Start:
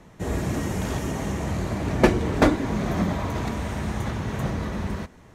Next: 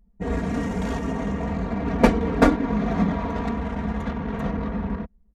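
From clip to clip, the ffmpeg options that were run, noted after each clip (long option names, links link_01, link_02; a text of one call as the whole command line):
ffmpeg -i in.wav -af "anlmdn=10,aecho=1:1:4.3:0.96,adynamicequalizer=threshold=0.0126:dfrequency=2200:dqfactor=0.7:tfrequency=2200:tqfactor=0.7:attack=5:release=100:ratio=0.375:range=2:mode=cutabove:tftype=highshelf,volume=-1dB" out.wav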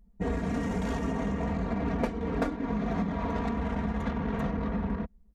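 ffmpeg -i in.wav -af "acompressor=threshold=-26dB:ratio=10" out.wav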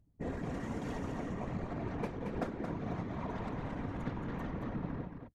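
ffmpeg -i in.wav -af "afftfilt=real='hypot(re,im)*cos(2*PI*random(0))':imag='hypot(re,im)*sin(2*PI*random(1))':win_size=512:overlap=0.75,aecho=1:1:224:0.473,volume=-3dB" out.wav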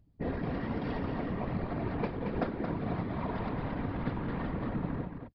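ffmpeg -i in.wav -af "aresample=11025,aresample=44100,volume=4.5dB" out.wav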